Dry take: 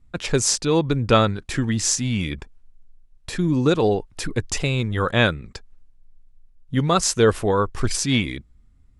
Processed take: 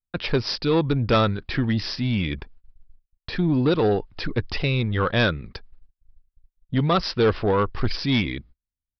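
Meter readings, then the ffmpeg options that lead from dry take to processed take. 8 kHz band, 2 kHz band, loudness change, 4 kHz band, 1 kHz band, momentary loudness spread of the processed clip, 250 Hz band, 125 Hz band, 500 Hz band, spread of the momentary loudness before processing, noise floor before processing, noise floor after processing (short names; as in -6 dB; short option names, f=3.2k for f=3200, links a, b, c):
under -25 dB, -1.5 dB, -2.0 dB, -2.0 dB, -2.0 dB, 10 LU, -1.0 dB, -0.5 dB, -2.0 dB, 10 LU, -55 dBFS, under -85 dBFS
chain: -af "agate=range=-38dB:threshold=-44dB:ratio=16:detection=peak,aresample=11025,asoftclip=type=tanh:threshold=-14dB,aresample=44100,volume=1dB"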